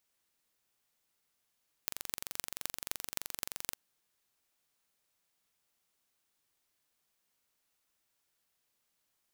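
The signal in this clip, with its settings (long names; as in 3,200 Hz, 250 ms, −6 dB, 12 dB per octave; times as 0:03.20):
impulse train 23.2 per second, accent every 6, −5.5 dBFS 1.86 s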